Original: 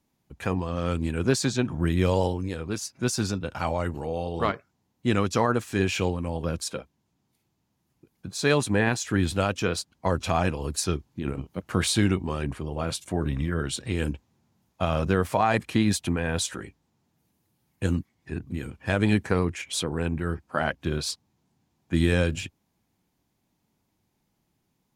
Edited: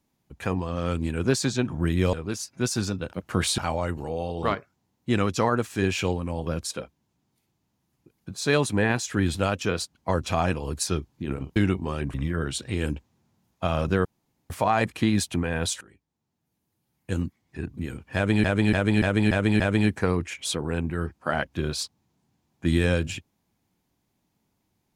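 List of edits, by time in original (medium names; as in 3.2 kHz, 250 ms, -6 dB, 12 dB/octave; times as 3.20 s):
2.13–2.55 s: delete
11.53–11.98 s: move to 3.55 s
12.56–13.32 s: delete
15.23 s: insert room tone 0.45 s
16.54–18.35 s: fade in, from -19 dB
18.88–19.17 s: loop, 6 plays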